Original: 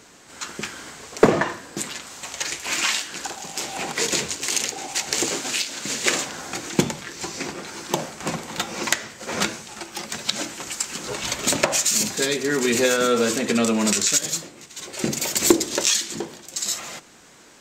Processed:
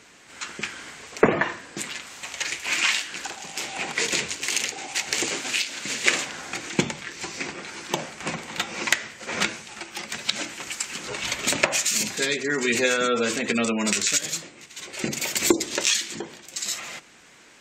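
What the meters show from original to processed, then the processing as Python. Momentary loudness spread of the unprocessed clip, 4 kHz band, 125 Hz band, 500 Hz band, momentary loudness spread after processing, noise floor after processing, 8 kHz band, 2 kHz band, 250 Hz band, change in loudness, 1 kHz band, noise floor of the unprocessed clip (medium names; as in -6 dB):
14 LU, -1.5 dB, -4.5 dB, -4.0 dB, 12 LU, -51 dBFS, -3.5 dB, +2.0 dB, -4.0 dB, -2.0 dB, -2.5 dB, -49 dBFS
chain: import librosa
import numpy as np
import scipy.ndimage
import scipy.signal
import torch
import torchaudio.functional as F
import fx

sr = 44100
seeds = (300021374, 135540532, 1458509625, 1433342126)

y = fx.spec_gate(x, sr, threshold_db=-30, keep='strong')
y = fx.peak_eq(y, sr, hz=2300.0, db=7.5, octaves=1.2)
y = fx.cheby_harmonics(y, sr, harmonics=(7,), levels_db=(-36,), full_scale_db=2.5)
y = y * 10.0 ** (-3.5 / 20.0)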